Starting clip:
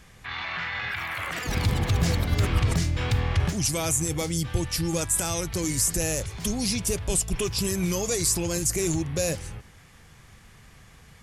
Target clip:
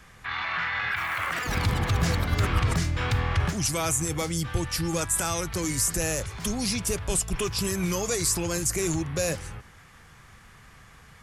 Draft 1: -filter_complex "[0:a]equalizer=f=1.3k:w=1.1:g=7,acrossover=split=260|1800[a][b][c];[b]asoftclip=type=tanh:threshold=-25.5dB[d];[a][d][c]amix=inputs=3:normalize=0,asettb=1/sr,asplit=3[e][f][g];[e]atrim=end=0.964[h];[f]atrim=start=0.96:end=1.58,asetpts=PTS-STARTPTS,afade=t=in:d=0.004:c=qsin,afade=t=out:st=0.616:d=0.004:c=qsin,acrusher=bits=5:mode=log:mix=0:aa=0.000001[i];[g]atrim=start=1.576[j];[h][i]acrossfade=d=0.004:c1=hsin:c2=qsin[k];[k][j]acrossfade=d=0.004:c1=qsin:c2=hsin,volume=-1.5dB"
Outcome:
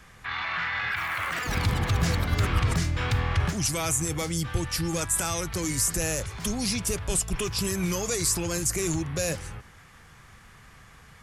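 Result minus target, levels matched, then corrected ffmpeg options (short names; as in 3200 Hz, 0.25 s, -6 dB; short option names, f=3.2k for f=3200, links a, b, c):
soft clip: distortion +16 dB
-filter_complex "[0:a]equalizer=f=1.3k:w=1.1:g=7,acrossover=split=260|1800[a][b][c];[b]asoftclip=type=tanh:threshold=-15.5dB[d];[a][d][c]amix=inputs=3:normalize=0,asettb=1/sr,asplit=3[e][f][g];[e]atrim=end=0.964[h];[f]atrim=start=0.96:end=1.58,asetpts=PTS-STARTPTS,afade=t=in:d=0.004:c=qsin,afade=t=out:st=0.616:d=0.004:c=qsin,acrusher=bits=5:mode=log:mix=0:aa=0.000001[i];[g]atrim=start=1.576[j];[h][i]acrossfade=d=0.004:c1=hsin:c2=qsin[k];[k][j]acrossfade=d=0.004:c1=qsin:c2=hsin,volume=-1.5dB"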